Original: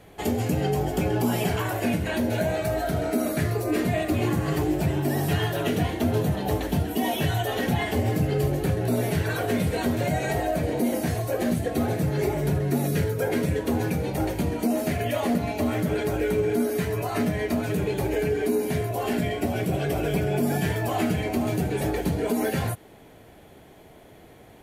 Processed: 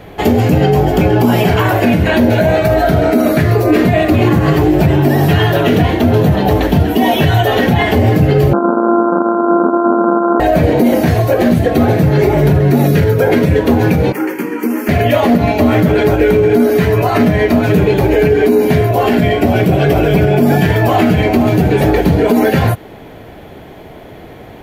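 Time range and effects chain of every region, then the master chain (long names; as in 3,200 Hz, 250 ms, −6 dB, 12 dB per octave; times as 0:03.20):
0:08.53–0:10.40: samples sorted by size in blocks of 128 samples + linear-phase brick-wall band-pass 190–1,600 Hz
0:14.12–0:14.89: high-pass filter 280 Hz 24 dB per octave + phaser with its sweep stopped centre 1,600 Hz, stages 4
whole clip: parametric band 9,000 Hz −13.5 dB 1.2 octaves; boost into a limiter +17 dB; level −1 dB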